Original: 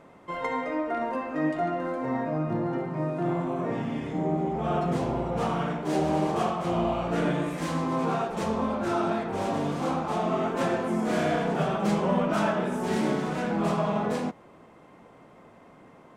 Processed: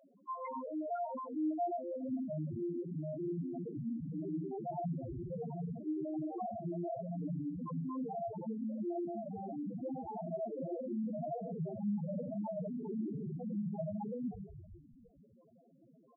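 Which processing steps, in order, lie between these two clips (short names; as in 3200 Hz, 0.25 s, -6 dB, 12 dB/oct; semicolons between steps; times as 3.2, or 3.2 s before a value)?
frequency-shifting echo 0.155 s, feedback 62%, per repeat -51 Hz, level -9 dB; tube stage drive 29 dB, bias 0.65; loudest bins only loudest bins 2; gain +1 dB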